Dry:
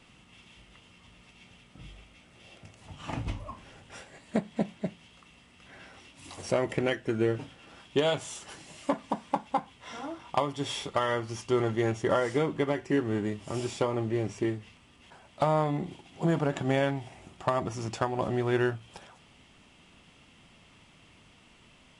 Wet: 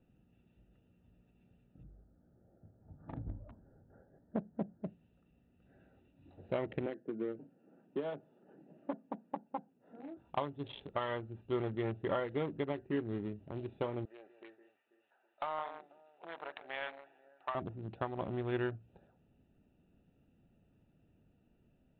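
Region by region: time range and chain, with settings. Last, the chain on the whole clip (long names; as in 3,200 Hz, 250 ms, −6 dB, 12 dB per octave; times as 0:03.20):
0:01.83–0:04.87: inverse Chebyshev band-stop filter 2,300–4,700 Hz + upward compression, threshold −53 dBFS
0:06.86–0:10.17: high-pass filter 180 Hz 24 dB per octave + head-to-tape spacing loss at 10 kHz 43 dB + multiband upward and downward compressor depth 40%
0:14.05–0:17.55: high-pass filter 1,000 Hz + delay that swaps between a low-pass and a high-pass 163 ms, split 2,100 Hz, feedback 63%, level −9.5 dB + mid-hump overdrive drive 11 dB, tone 2,500 Hz, clips at −16.5 dBFS
whole clip: adaptive Wiener filter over 41 samples; Butterworth low-pass 4,000 Hz 96 dB per octave; level −8 dB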